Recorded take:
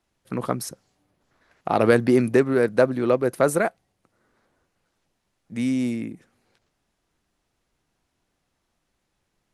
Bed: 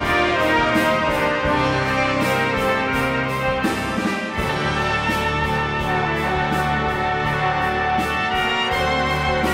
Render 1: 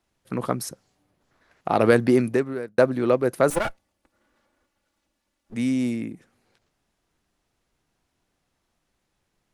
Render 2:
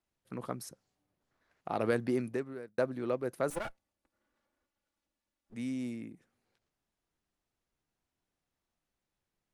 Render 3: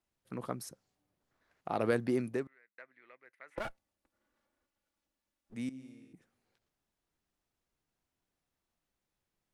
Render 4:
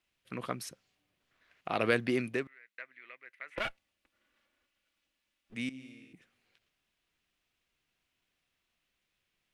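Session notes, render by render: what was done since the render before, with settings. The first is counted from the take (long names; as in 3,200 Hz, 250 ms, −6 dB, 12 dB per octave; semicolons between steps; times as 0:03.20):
0:02.11–0:02.78: fade out; 0:03.50–0:05.55: lower of the sound and its delayed copy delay 3.5 ms
level −13 dB
0:02.47–0:03.58: resonant band-pass 2,000 Hz, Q 7.5; 0:05.69–0:06.13: tuned comb filter 66 Hz, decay 1.6 s, mix 90%
parametric band 2,700 Hz +13.5 dB 1.5 octaves; notch filter 860 Hz, Q 12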